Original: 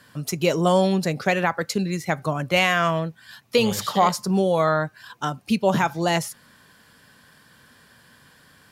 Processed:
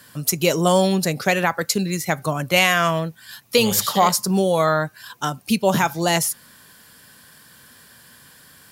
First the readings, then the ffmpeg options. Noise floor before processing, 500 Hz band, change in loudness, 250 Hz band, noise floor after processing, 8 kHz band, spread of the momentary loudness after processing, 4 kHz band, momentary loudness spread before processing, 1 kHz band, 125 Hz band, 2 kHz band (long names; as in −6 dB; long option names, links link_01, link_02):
−55 dBFS, +1.5 dB, +2.5 dB, +1.5 dB, −50 dBFS, +9.5 dB, 9 LU, +5.0 dB, 11 LU, +2.0 dB, +1.5 dB, +3.0 dB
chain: -af "aemphasis=mode=production:type=50kf,volume=1.5dB"